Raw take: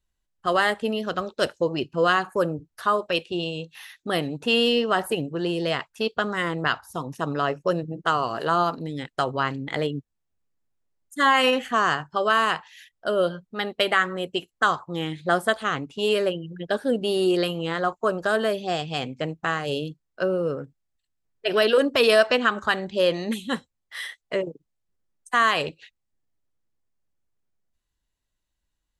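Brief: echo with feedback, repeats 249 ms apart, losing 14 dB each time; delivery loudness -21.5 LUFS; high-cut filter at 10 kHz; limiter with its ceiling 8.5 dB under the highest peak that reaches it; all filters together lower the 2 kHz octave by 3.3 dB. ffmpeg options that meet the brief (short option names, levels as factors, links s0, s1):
-af "lowpass=10000,equalizer=f=2000:t=o:g=-4.5,alimiter=limit=0.158:level=0:latency=1,aecho=1:1:249|498:0.2|0.0399,volume=2.11"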